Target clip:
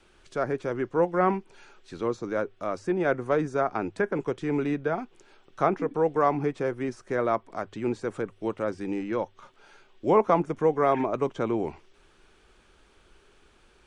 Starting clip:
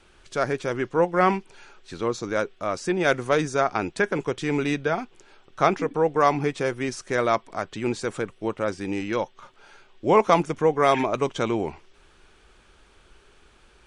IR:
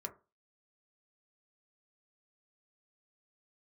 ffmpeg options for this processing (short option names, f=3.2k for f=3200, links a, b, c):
-filter_complex "[0:a]equalizer=f=320:t=o:w=1.6:g=2.5,bandreject=f=50:t=h:w=6,bandreject=f=100:t=h:w=6,acrossover=split=410|1900[a][b][c];[c]acompressor=threshold=-47dB:ratio=6[d];[a][b][d]amix=inputs=3:normalize=0,volume=-4dB"